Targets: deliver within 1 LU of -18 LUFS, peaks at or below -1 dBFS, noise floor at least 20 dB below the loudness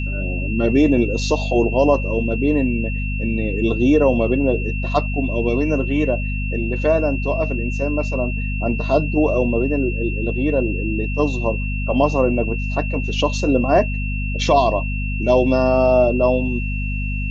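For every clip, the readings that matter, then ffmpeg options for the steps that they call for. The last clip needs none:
hum 50 Hz; harmonics up to 250 Hz; hum level -21 dBFS; steady tone 2700 Hz; tone level -29 dBFS; loudness -19.5 LUFS; peak -3.5 dBFS; loudness target -18.0 LUFS
-> -af "bandreject=f=50:t=h:w=4,bandreject=f=100:t=h:w=4,bandreject=f=150:t=h:w=4,bandreject=f=200:t=h:w=4,bandreject=f=250:t=h:w=4"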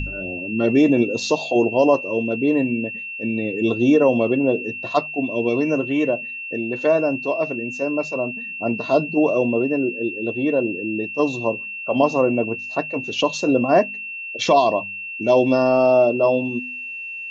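hum none; steady tone 2700 Hz; tone level -29 dBFS
-> -af "bandreject=f=2.7k:w=30"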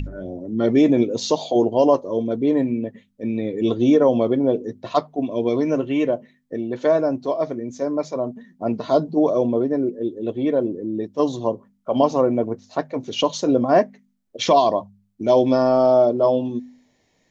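steady tone none; loudness -20.5 LUFS; peak -5.0 dBFS; loudness target -18.0 LUFS
-> -af "volume=2.5dB"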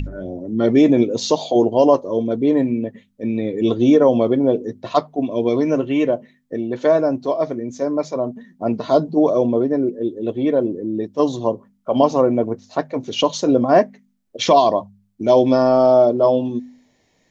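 loudness -18.0 LUFS; peak -2.5 dBFS; noise floor -63 dBFS

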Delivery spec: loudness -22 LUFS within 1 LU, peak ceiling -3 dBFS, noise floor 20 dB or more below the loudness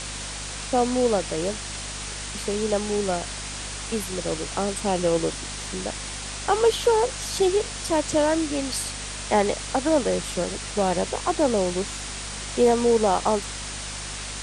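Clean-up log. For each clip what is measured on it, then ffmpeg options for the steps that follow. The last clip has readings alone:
hum 50 Hz; harmonics up to 250 Hz; hum level -37 dBFS; noise floor -34 dBFS; noise floor target -45 dBFS; loudness -25.0 LUFS; peak -8.0 dBFS; loudness target -22.0 LUFS
-> -af "bandreject=f=50:t=h:w=6,bandreject=f=100:t=h:w=6,bandreject=f=150:t=h:w=6,bandreject=f=200:t=h:w=6,bandreject=f=250:t=h:w=6"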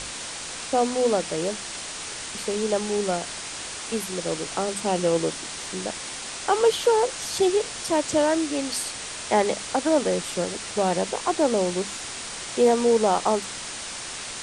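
hum none; noise floor -35 dBFS; noise floor target -45 dBFS
-> -af "afftdn=nr=10:nf=-35"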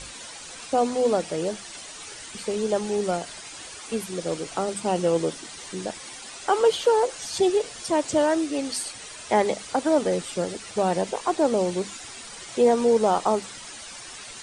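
noise floor -41 dBFS; noise floor target -45 dBFS
-> -af "afftdn=nr=6:nf=-41"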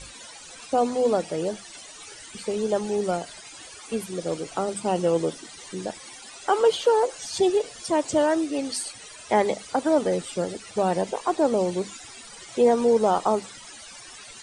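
noise floor -44 dBFS; noise floor target -45 dBFS
-> -af "afftdn=nr=6:nf=-44"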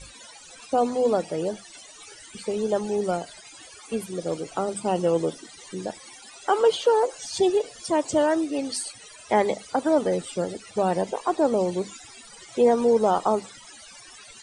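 noise floor -47 dBFS; loudness -25.0 LUFS; peak -8.5 dBFS; loudness target -22.0 LUFS
-> -af "volume=3dB"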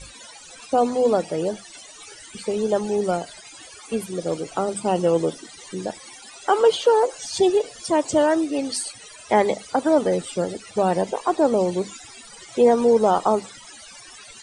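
loudness -22.0 LUFS; peak -5.5 dBFS; noise floor -44 dBFS

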